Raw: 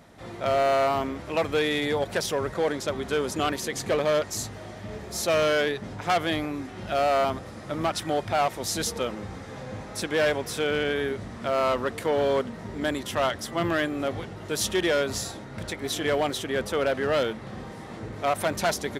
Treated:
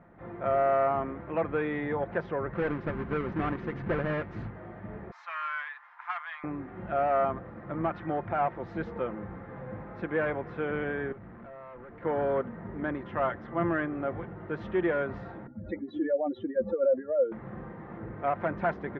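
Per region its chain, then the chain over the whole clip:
2.53–4.5 half-waves squared off + bell 740 Hz -6.5 dB 2.2 oct
5.11–6.44 elliptic high-pass 980 Hz, stop band 70 dB + bell 6600 Hz +9.5 dB 0.89 oct
11.12–12.03 compressor, threshold -30 dBFS + tube stage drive 40 dB, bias 0.45
15.47–17.32 spectral contrast raised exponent 2.6 + HPF 61 Hz + comb 3.6 ms, depth 88%
whole clip: LPF 1800 Hz 24 dB/oct; bell 620 Hz -2 dB; comb 5.8 ms, depth 33%; gain -3 dB

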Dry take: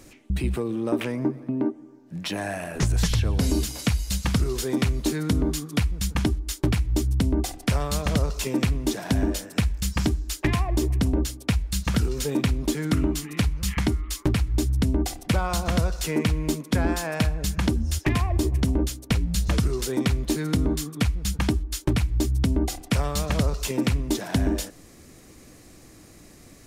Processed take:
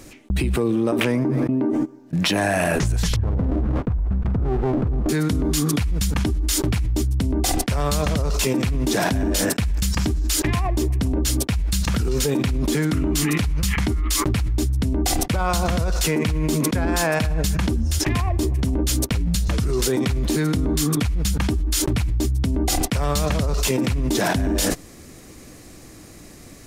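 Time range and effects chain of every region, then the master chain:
3.16–5.09 inverse Chebyshev low-pass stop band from 4000 Hz, stop band 60 dB + running maximum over 33 samples
whole clip: gate -37 dBFS, range -32 dB; fast leveller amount 100%; gain -2 dB

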